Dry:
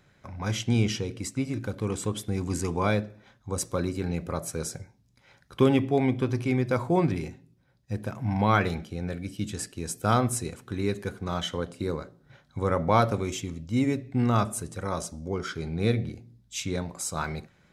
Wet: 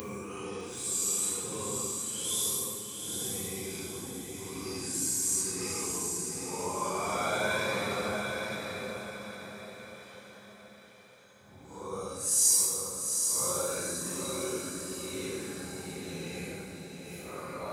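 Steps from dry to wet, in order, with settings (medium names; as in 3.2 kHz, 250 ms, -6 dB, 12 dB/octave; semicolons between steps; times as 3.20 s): Paulstretch 7.1×, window 0.05 s, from 1.85 s; RIAA curve recording; echo that smears into a reverb 822 ms, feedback 43%, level -4.5 dB; gated-style reverb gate 460 ms falling, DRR 4 dB; trim -7 dB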